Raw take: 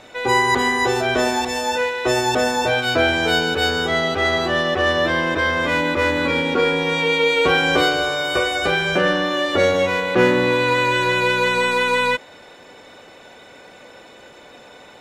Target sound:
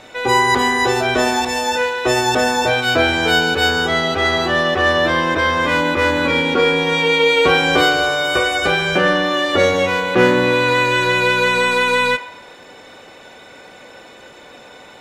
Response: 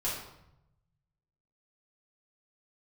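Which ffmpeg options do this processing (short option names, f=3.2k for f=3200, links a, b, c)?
-filter_complex "[0:a]asplit=2[a][b];[b]highpass=f=510:w=0.5412,highpass=f=510:w=1.3066[c];[1:a]atrim=start_sample=2205[d];[c][d]afir=irnorm=-1:irlink=0,volume=-16dB[e];[a][e]amix=inputs=2:normalize=0,volume=2.5dB"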